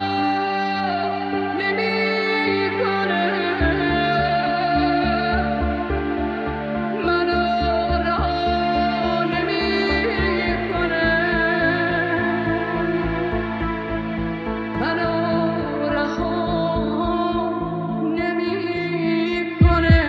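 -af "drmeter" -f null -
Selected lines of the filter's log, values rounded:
Channel 1: DR: 7.8
Overall DR: 7.8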